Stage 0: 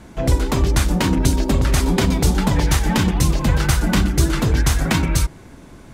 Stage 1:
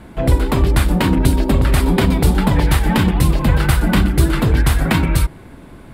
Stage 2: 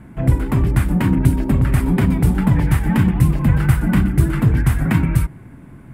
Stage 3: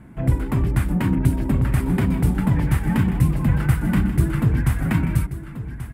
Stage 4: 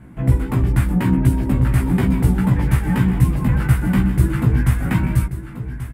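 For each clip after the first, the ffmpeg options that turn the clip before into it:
-af "equalizer=f=6.2k:w=2:g=-14,volume=3dB"
-af "equalizer=f=125:t=o:w=1:g=10,equalizer=f=250:t=o:w=1:g=4,equalizer=f=500:t=o:w=1:g=-4,equalizer=f=2k:t=o:w=1:g=4,equalizer=f=4k:t=o:w=1:g=-11,volume=-6dB"
-af "aecho=1:1:1134:0.237,volume=-4dB"
-filter_complex "[0:a]asplit=2[a][b];[b]adelay=16,volume=-2dB[c];[a][c]amix=inputs=2:normalize=0"

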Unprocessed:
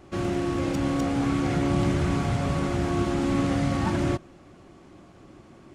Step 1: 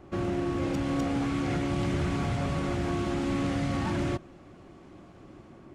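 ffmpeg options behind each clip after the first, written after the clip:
-filter_complex "[0:a]highshelf=f=2.8k:g=-10,acrossover=split=2000[a][b];[a]alimiter=limit=-22dB:level=0:latency=1:release=32[c];[b]dynaudnorm=f=450:g=3:m=4dB[d];[c][d]amix=inputs=2:normalize=0"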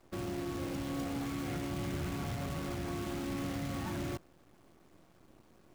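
-af "acrusher=bits=7:dc=4:mix=0:aa=0.000001,volume=-8.5dB"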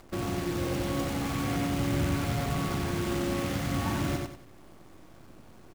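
-filter_complex "[0:a]acompressor=mode=upward:threshold=-56dB:ratio=2.5,aeval=exprs='val(0)+0.000501*(sin(2*PI*50*n/s)+sin(2*PI*2*50*n/s)/2+sin(2*PI*3*50*n/s)/3+sin(2*PI*4*50*n/s)/4+sin(2*PI*5*50*n/s)/5)':c=same,asplit=2[a][b];[b]aecho=0:1:92|184|276|368:0.708|0.219|0.068|0.0211[c];[a][c]amix=inputs=2:normalize=0,volume=6.5dB"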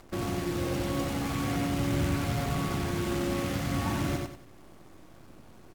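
-ar 44100 -c:a aac -b:a 96k

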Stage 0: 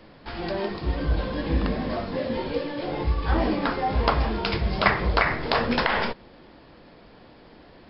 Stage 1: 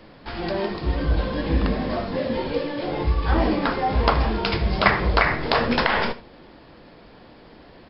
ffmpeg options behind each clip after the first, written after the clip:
-af "aecho=1:1:77:0.168,volume=2.5dB"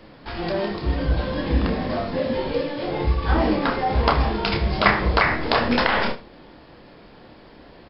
-filter_complex "[0:a]asplit=2[a][b];[b]adelay=29,volume=-7dB[c];[a][c]amix=inputs=2:normalize=0"

